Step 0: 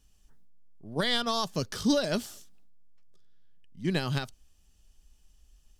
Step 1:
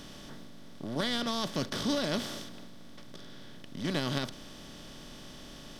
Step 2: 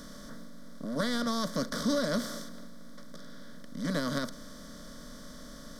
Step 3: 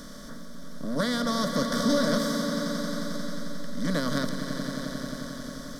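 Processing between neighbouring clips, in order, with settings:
compressor on every frequency bin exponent 0.4; level −8 dB
phaser with its sweep stopped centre 540 Hz, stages 8; level +3.5 dB
echo that builds up and dies away 89 ms, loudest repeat 5, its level −11.5 dB; level +3.5 dB

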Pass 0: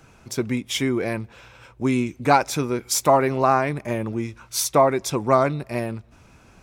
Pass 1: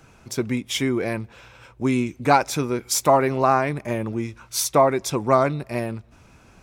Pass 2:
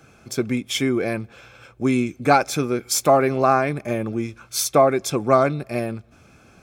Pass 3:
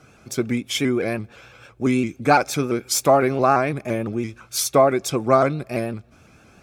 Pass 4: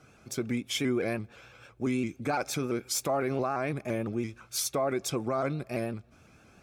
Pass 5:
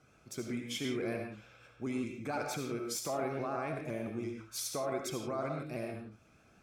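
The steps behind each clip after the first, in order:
no processing that can be heard
notch comb filter 960 Hz; level +2 dB
pitch modulation by a square or saw wave saw up 5.9 Hz, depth 100 cents
brickwall limiter −13.5 dBFS, peak gain reduction 11 dB; level −6.5 dB
convolution reverb, pre-delay 30 ms, DRR 2 dB; level −8 dB

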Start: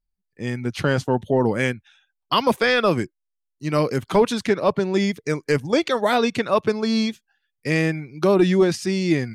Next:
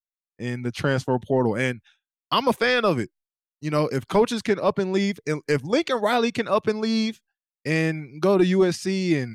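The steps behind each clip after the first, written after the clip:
downward expander −42 dBFS
level −2 dB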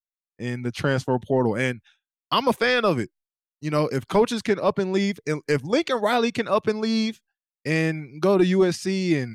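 no processing that can be heard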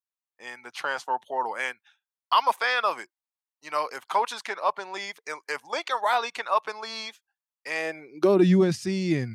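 high-pass filter sweep 900 Hz → 83 Hz, 0:07.70–0:08.91
level −4 dB

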